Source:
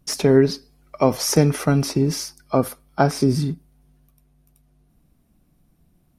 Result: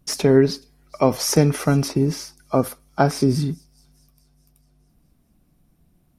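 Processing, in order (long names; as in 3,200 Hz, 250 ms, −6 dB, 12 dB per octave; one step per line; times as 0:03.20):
0:01.88–0:02.64: parametric band 12,000 Hz −6.5 dB 2.6 octaves
on a send: delay with a high-pass on its return 425 ms, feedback 45%, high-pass 5,200 Hz, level −21.5 dB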